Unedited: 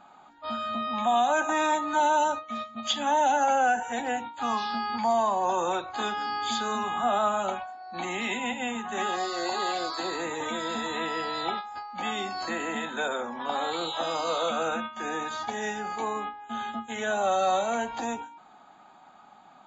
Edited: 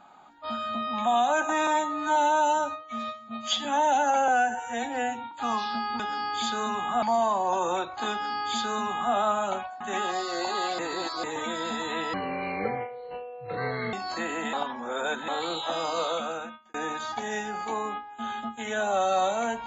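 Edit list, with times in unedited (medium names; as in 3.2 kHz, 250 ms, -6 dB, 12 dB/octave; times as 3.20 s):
1.67–2.99 s: stretch 1.5×
3.62–4.31 s: stretch 1.5×
6.08–7.11 s: copy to 4.99 s
7.77–8.85 s: delete
9.83–10.28 s: reverse
11.18–12.24 s: speed 59%
12.84–13.59 s: reverse
14.32–15.05 s: fade out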